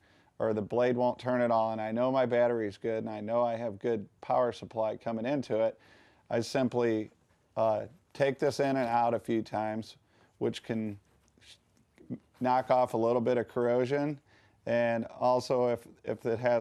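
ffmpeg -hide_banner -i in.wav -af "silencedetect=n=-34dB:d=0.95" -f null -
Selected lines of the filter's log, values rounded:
silence_start: 10.92
silence_end: 12.11 | silence_duration: 1.18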